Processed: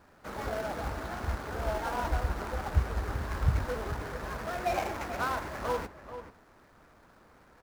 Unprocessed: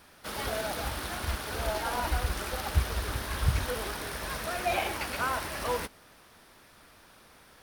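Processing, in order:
running median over 15 samples
slap from a distant wall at 75 metres, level −11 dB

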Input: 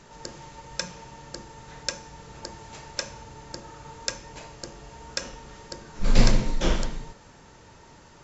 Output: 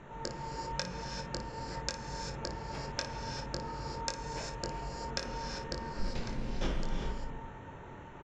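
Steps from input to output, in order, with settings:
adaptive Wiener filter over 9 samples
downward compressor 10 to 1, threshold −31 dBFS, peak gain reduction 21.5 dB
high-frequency loss of the air 66 metres
ambience of single reflections 22 ms −7.5 dB, 56 ms −12 dB
reverb whose tail is shaped and stops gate 420 ms rising, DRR 4 dB
level +1.5 dB

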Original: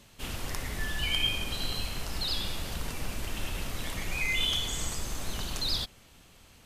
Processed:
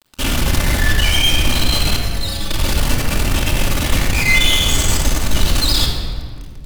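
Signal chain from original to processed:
low-shelf EQ 110 Hz +3 dB
in parallel at −4.5 dB: fuzz pedal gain 48 dB, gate −46 dBFS
on the sum: bit reduction 7 bits
0:01.96–0:02.50: stiff-string resonator 100 Hz, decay 0.2 s, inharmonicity 0.008
rectangular room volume 3,000 cubic metres, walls mixed, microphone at 2.5 metres
level −1 dB

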